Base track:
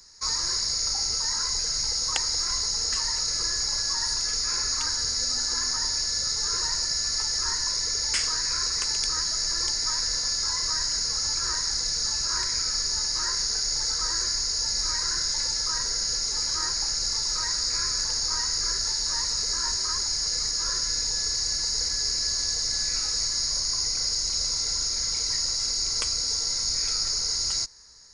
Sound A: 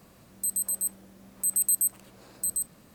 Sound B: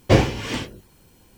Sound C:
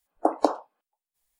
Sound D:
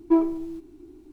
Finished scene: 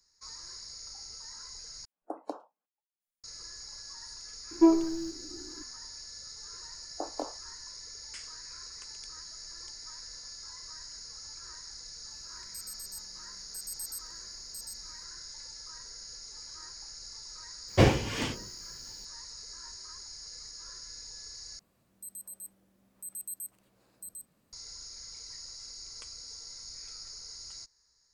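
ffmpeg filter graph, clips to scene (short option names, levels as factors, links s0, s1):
-filter_complex "[3:a]asplit=2[s0][s1];[1:a]asplit=2[s2][s3];[0:a]volume=0.119[s4];[s0]lowshelf=f=130:t=q:w=3:g=-9.5[s5];[s1]flanger=delay=17.5:depth=7.3:speed=2.8[s6];[2:a]bandreject=f=60:t=h:w=6,bandreject=f=120:t=h:w=6,bandreject=f=180:t=h:w=6,bandreject=f=240:t=h:w=6,bandreject=f=300:t=h:w=6,bandreject=f=360:t=h:w=6,bandreject=f=420:t=h:w=6,bandreject=f=480:t=h:w=6,bandreject=f=540:t=h:w=6,bandreject=f=600:t=h:w=6[s7];[s4]asplit=3[s8][s9][s10];[s8]atrim=end=1.854[s11];[s5]atrim=end=1.39,asetpts=PTS-STARTPTS,volume=0.133[s12];[s9]atrim=start=3.236:end=21.594[s13];[s3]atrim=end=2.94,asetpts=PTS-STARTPTS,volume=0.158[s14];[s10]atrim=start=24.526[s15];[4:a]atrim=end=1.12,asetpts=PTS-STARTPTS,volume=0.891,afade=t=in:d=0.004:c=hsin,afade=t=out:st=1.116:d=0.004:c=hsin,adelay=4510[s16];[s6]atrim=end=1.39,asetpts=PTS-STARTPTS,volume=0.266,afade=t=in:d=0.004:c=hsin,afade=t=out:st=1.386:d=0.004:c=hsin,adelay=6750[s17];[s2]atrim=end=2.94,asetpts=PTS-STARTPTS,volume=0.158,afade=t=in:d=0.004:c=hsin,afade=t=out:st=2.936:d=0.004:c=hsin,adelay=12110[s18];[s7]atrim=end=1.37,asetpts=PTS-STARTPTS,volume=0.562,afade=t=in:d=0.004:c=hsin,afade=t=out:st=1.366:d=0.004:c=hsin,adelay=17680[s19];[s11][s12]acrossfade=d=0.004:c1=hsin:c2=hsin[s20];[s20][s13]acrossfade=d=0.004:c1=hsin:c2=hsin[s21];[s21][s14]acrossfade=d=0.004:c1=hsin:c2=hsin[s22];[s22][s15]acrossfade=d=0.004:c1=hsin:c2=hsin[s23];[s23][s16][s17][s18][s19]amix=inputs=5:normalize=0"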